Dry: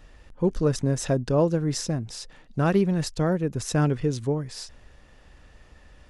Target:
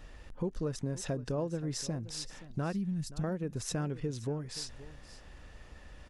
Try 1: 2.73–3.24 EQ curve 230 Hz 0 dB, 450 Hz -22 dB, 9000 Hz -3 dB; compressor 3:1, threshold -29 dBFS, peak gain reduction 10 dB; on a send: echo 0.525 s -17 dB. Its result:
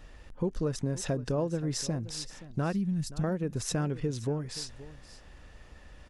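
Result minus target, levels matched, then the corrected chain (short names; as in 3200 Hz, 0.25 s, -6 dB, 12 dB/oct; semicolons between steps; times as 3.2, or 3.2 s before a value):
compressor: peak gain reduction -4 dB
2.73–3.24 EQ curve 230 Hz 0 dB, 450 Hz -22 dB, 9000 Hz -3 dB; compressor 3:1, threshold -35 dBFS, peak gain reduction 14 dB; on a send: echo 0.525 s -17 dB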